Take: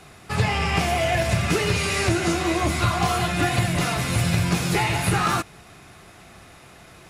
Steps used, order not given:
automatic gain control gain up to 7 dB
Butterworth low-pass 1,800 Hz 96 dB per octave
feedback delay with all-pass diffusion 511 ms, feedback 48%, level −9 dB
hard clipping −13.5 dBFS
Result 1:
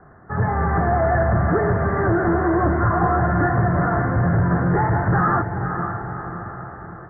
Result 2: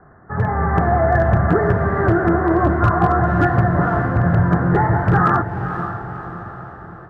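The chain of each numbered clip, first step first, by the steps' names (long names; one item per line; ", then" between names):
feedback delay with all-pass diffusion, then automatic gain control, then hard clipping, then Butterworth low-pass
Butterworth low-pass, then hard clipping, then feedback delay with all-pass diffusion, then automatic gain control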